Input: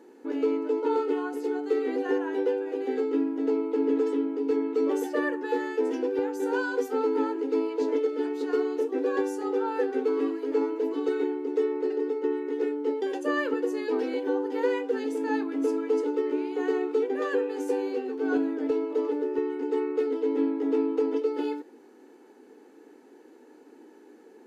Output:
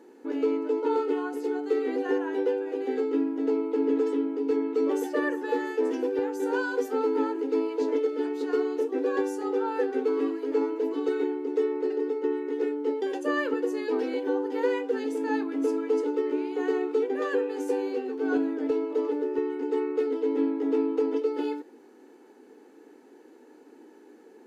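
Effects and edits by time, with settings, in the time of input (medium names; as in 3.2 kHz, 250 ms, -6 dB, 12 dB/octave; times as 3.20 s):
4.79–5.22 s: echo throw 340 ms, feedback 75%, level -16 dB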